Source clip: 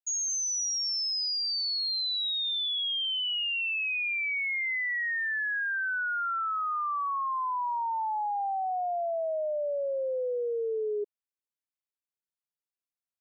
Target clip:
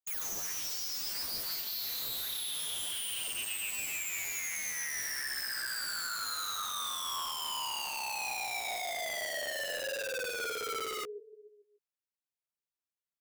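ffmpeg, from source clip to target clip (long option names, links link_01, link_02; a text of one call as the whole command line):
ffmpeg -i in.wav -filter_complex "[0:a]asplit=2[link_01][link_02];[link_02]aecho=0:1:145|290|435|580|725:0.316|0.155|0.0759|0.0372|0.0182[link_03];[link_01][link_03]amix=inputs=2:normalize=0,aeval=exprs='(mod(26.6*val(0)+1,2)-1)/26.6':channel_layout=same,flanger=delay=8.7:depth=8.9:regen=1:speed=0.3:shape=triangular,volume=-1.5dB" out.wav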